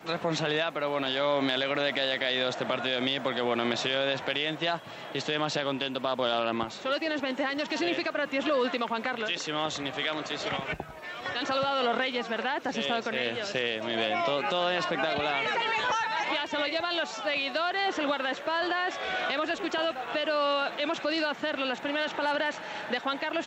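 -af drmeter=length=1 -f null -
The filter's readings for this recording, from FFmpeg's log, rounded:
Channel 1: DR: 13.3
Overall DR: 13.3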